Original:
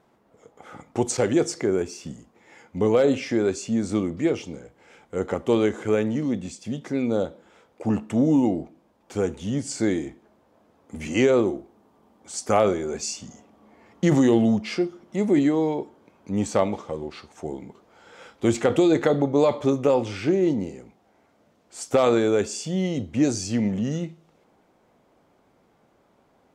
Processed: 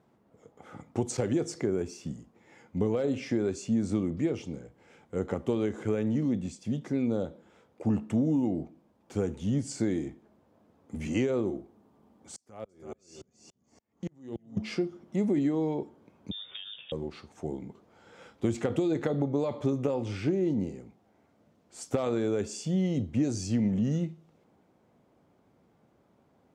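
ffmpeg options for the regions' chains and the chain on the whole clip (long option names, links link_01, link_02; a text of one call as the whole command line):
ffmpeg -i in.wav -filter_complex "[0:a]asettb=1/sr,asplit=3[link_01][link_02][link_03];[link_01]atrim=end=12.364[link_04];[link_02]atrim=start=12.36:end=14.57,asetpts=PTS-STARTPTS,afade=type=in:duration=0.004:curve=qsin,afade=type=out:start_time=2.206:duration=0.004:curve=qsin,acompressor=threshold=-30dB:ratio=3:attack=3.2:release=140:knee=1:detection=peak,aecho=1:1:330|660|990:0.422|0.0717|0.0122,atrim=end_sample=97461,aeval=exprs='val(0)*pow(10,-39*if(lt(mod(-3.5*n/s,1),2*abs(-3.5)/1000),1-mod(-3.5*n/s,1)/(2*abs(-3.5)/1000),(mod(-3.5*n/s,1)-2*abs(-3.5)/1000)/(1-2*abs(-3.5)/1000))/20)':channel_layout=same[link_05];[link_03]atrim=start=14.566[link_06];[link_04][link_05]acrossfade=duration=0.004:curve1=hsin:curve2=qsin[link_07];[link_07][link_06]acrossfade=duration=0.004:curve1=qsin:curve2=hsin,asettb=1/sr,asplit=3[link_08][link_09][link_10];[link_08]atrim=end=16.314[link_11];[link_09]atrim=start=16.31:end=16.92,asetpts=PTS-STARTPTS,afade=type=in:duration=0.004:curve=qsin,afade=type=out:start_time=0.606:duration=0.004:curve=qsin,acompressor=threshold=-30dB:ratio=10:attack=3.2:release=140:knee=1:detection=peak,lowpass=frequency=3200:width_type=q:width=0.5098,lowpass=frequency=3200:width_type=q:width=0.6013,lowpass=frequency=3200:width_type=q:width=0.9,lowpass=frequency=3200:width_type=q:width=2.563,afreqshift=-3800[link_12];[link_10]atrim=start=16.916[link_13];[link_11][link_12]acrossfade=duration=0.004:curve1=hsin:curve2=qsin[link_14];[link_14][link_13]acrossfade=duration=0.004:curve1=qsin:curve2=hsin,acompressor=threshold=-21dB:ratio=6,highpass=74,lowshelf=frequency=290:gain=10.5,volume=-7.5dB" out.wav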